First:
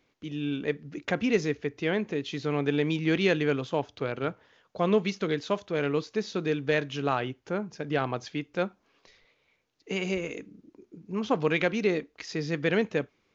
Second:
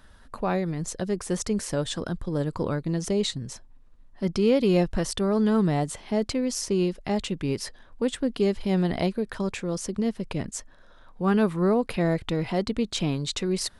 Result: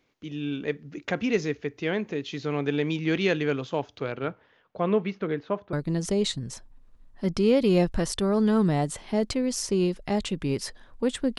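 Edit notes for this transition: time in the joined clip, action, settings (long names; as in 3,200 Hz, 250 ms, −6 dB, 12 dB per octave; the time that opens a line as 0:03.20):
first
0:04.14–0:05.73: low-pass filter 4,100 Hz → 1,400 Hz
0:05.73: continue with second from 0:02.72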